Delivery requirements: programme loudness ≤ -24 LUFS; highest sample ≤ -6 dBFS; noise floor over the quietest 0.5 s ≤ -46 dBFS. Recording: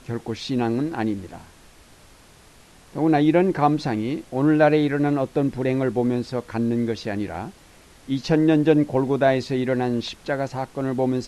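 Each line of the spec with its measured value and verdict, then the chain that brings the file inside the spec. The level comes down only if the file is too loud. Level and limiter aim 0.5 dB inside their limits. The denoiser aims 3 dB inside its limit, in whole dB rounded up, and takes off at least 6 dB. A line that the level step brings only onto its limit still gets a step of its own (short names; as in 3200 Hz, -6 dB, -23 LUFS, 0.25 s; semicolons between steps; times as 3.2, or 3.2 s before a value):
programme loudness -22.0 LUFS: fail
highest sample -4.5 dBFS: fail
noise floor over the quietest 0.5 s -50 dBFS: OK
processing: gain -2.5 dB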